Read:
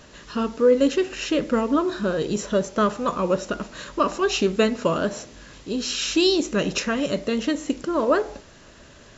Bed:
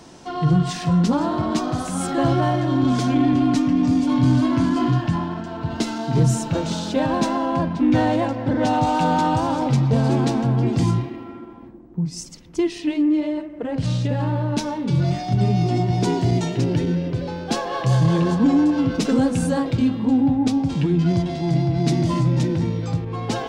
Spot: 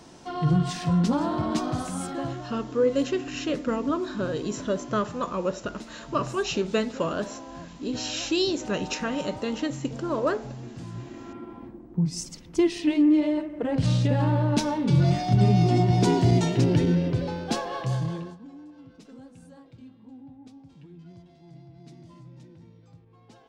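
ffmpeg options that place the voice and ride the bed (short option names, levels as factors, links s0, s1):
-filter_complex "[0:a]adelay=2150,volume=0.531[s0];[1:a]volume=5.62,afade=t=out:st=1.8:d=0.63:silence=0.16788,afade=t=in:st=10.92:d=0.64:silence=0.105925,afade=t=out:st=17.04:d=1.34:silence=0.0398107[s1];[s0][s1]amix=inputs=2:normalize=0"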